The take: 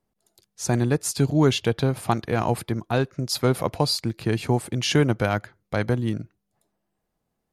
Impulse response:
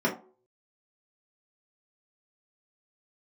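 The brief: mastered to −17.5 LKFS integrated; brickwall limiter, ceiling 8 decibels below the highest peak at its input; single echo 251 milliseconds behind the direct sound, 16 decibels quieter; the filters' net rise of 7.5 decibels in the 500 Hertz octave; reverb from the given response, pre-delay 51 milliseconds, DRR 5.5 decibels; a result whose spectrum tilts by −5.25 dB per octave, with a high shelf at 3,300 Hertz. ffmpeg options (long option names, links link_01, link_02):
-filter_complex "[0:a]equalizer=frequency=500:width_type=o:gain=9,highshelf=frequency=3300:gain=3.5,alimiter=limit=-10dB:level=0:latency=1,aecho=1:1:251:0.158,asplit=2[link_01][link_02];[1:a]atrim=start_sample=2205,adelay=51[link_03];[link_02][link_03]afir=irnorm=-1:irlink=0,volume=-17.5dB[link_04];[link_01][link_04]amix=inputs=2:normalize=0,volume=3dB"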